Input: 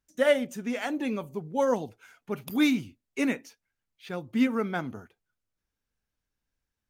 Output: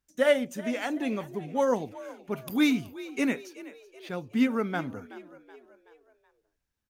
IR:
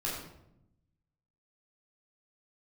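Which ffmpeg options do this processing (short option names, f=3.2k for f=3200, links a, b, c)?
-filter_complex "[0:a]asplit=5[a][b][c][d][e];[b]adelay=376,afreqshift=53,volume=-17dB[f];[c]adelay=752,afreqshift=106,volume=-23.6dB[g];[d]adelay=1128,afreqshift=159,volume=-30.1dB[h];[e]adelay=1504,afreqshift=212,volume=-36.7dB[i];[a][f][g][h][i]amix=inputs=5:normalize=0"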